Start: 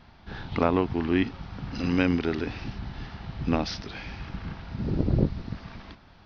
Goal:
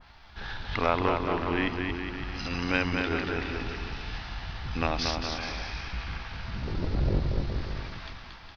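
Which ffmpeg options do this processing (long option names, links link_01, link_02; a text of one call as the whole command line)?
ffmpeg -i in.wav -af "atempo=0.73,acontrast=37,equalizer=frequency=210:width=0.39:gain=-14.5,aecho=1:1:230|414|561.2|679|773.2:0.631|0.398|0.251|0.158|0.1,adynamicequalizer=threshold=0.0112:dfrequency=2000:dqfactor=0.7:tfrequency=2000:tqfactor=0.7:attack=5:release=100:ratio=0.375:range=3:mode=cutabove:tftype=highshelf" out.wav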